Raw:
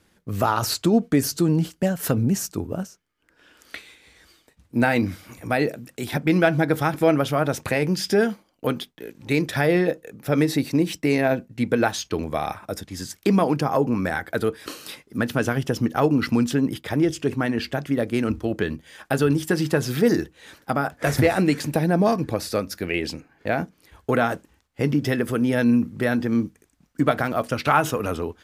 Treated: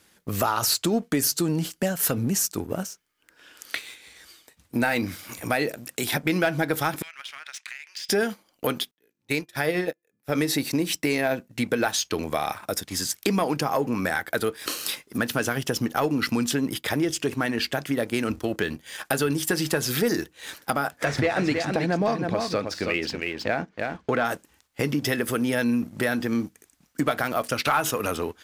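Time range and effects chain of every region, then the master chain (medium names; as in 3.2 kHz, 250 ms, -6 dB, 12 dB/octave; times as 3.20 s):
7.02–8.09 s: ladder high-pass 1.6 kHz, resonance 35% + distance through air 85 m + compression 12:1, threshold -41 dBFS
8.91–10.35 s: de-hum 345.4 Hz, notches 8 + upward expansion 2.5:1, over -37 dBFS
21.04–24.25 s: distance through air 130 m + delay 321 ms -7 dB
whole clip: tilt EQ +2 dB/octave; waveshaping leveller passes 1; compression 2:1, threshold -31 dBFS; trim +3.5 dB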